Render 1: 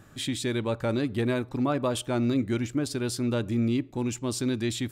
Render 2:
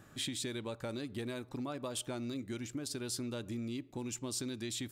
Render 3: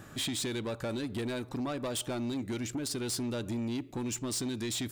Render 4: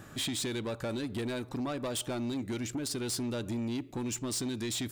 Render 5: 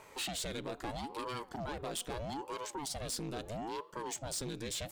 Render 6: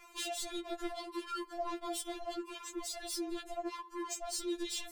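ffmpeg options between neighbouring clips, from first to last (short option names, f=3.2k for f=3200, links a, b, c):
-filter_complex "[0:a]lowshelf=f=110:g=-6,acrossover=split=3800[a][b];[a]acompressor=threshold=-34dB:ratio=6[c];[c][b]amix=inputs=2:normalize=0,volume=-3.5dB"
-af "asoftclip=type=tanh:threshold=-38dB,volume=8.5dB"
-af anull
-af "highpass=f=210:p=1,aeval=exprs='val(0)*sin(2*PI*420*n/s+420*0.8/0.77*sin(2*PI*0.77*n/s))':c=same,volume=-1dB"
-af "afftfilt=real='re*4*eq(mod(b,16),0)':imag='im*4*eq(mod(b,16),0)':win_size=2048:overlap=0.75,volume=2.5dB"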